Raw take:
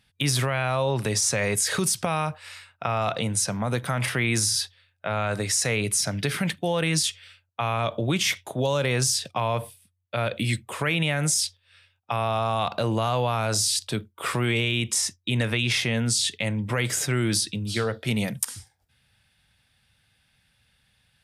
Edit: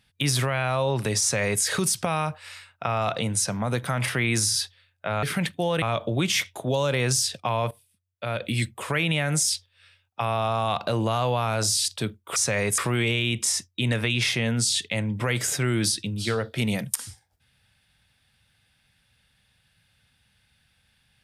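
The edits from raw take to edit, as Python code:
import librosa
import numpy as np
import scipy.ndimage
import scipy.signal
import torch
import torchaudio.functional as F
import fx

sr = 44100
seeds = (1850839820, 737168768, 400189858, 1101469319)

y = fx.edit(x, sr, fx.duplicate(start_s=1.21, length_s=0.42, to_s=14.27),
    fx.cut(start_s=5.23, length_s=1.04),
    fx.cut(start_s=6.86, length_s=0.87),
    fx.fade_in_from(start_s=9.62, length_s=0.9, floor_db=-15.5), tone=tone)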